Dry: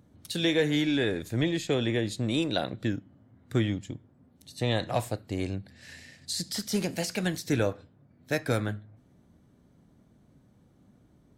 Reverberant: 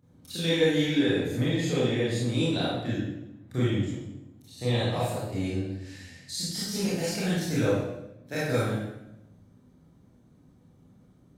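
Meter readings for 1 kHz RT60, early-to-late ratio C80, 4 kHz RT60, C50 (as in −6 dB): 0.80 s, 2.0 dB, 0.75 s, −2.0 dB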